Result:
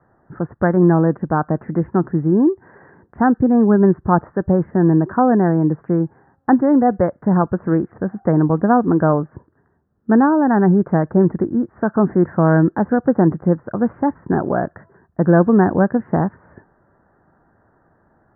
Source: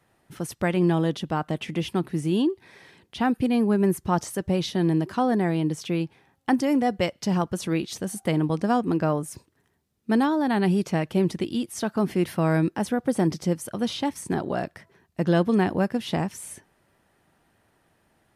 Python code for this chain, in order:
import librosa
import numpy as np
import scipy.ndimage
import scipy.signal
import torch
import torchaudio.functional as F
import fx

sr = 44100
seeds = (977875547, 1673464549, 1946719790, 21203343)

y = scipy.signal.sosfilt(scipy.signal.butter(12, 1700.0, 'lowpass', fs=sr, output='sos'), x)
y = F.gain(torch.from_numpy(y), 8.5).numpy()